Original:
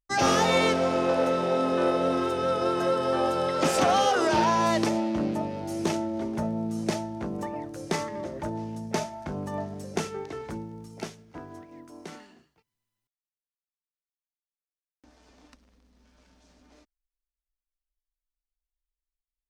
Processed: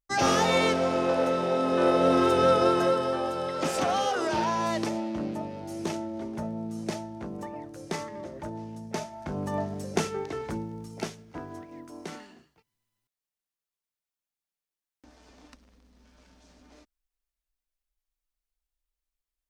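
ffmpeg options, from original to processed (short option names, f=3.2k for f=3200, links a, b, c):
-af "volume=13dB,afade=t=in:st=1.63:d=0.79:silence=0.446684,afade=t=out:st=2.42:d=0.78:silence=0.298538,afade=t=in:st=9.08:d=0.42:silence=0.446684"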